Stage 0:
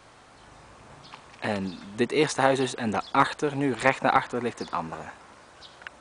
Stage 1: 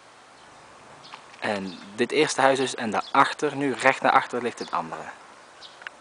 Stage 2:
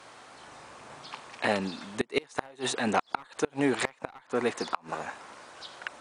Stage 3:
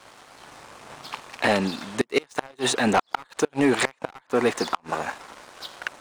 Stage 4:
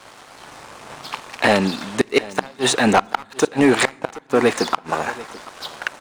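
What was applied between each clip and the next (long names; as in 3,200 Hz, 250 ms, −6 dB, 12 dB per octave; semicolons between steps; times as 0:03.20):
high-pass filter 330 Hz 6 dB per octave; level +3.5 dB
asymmetric clip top −13 dBFS; gate with flip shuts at −12 dBFS, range −30 dB
leveller curve on the samples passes 2
single-tap delay 737 ms −19 dB; on a send at −24 dB: convolution reverb RT60 0.90 s, pre-delay 5 ms; on the sum: level +5.5 dB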